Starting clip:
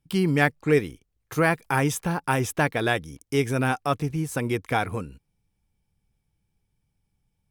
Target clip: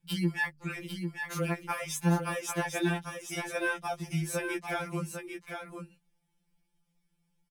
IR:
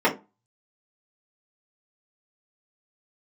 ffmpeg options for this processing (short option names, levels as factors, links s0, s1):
-filter_complex "[0:a]equalizer=f=3600:w=0.31:g=3,bandreject=f=50:t=h:w=6,bandreject=f=100:t=h:w=6,bandreject=f=150:t=h:w=6,acompressor=threshold=0.0501:ratio=6,asplit=2[s0][s1];[s1]aecho=0:1:797:0.473[s2];[s0][s2]amix=inputs=2:normalize=0,afftfilt=real='re*2.83*eq(mod(b,8),0)':imag='im*2.83*eq(mod(b,8),0)':win_size=2048:overlap=0.75"